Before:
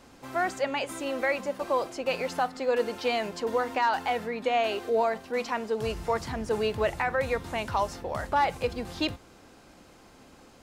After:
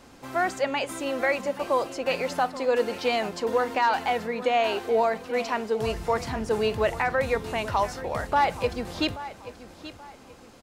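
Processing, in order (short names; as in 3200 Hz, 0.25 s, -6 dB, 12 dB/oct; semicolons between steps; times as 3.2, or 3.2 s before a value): feedback echo 0.83 s, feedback 32%, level -15 dB; gain +2.5 dB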